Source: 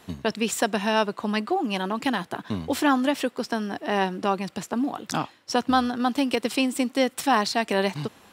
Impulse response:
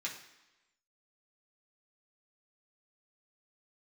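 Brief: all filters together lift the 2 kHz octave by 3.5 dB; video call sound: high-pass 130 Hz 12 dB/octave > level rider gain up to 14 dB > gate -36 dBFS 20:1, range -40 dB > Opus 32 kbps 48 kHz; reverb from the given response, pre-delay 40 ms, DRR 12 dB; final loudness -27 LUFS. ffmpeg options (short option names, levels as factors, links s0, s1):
-filter_complex "[0:a]equalizer=f=2000:t=o:g=4.5,asplit=2[s0][s1];[1:a]atrim=start_sample=2205,adelay=40[s2];[s1][s2]afir=irnorm=-1:irlink=0,volume=0.211[s3];[s0][s3]amix=inputs=2:normalize=0,highpass=130,dynaudnorm=m=5.01,agate=range=0.01:threshold=0.0158:ratio=20,volume=0.794" -ar 48000 -c:a libopus -b:a 32k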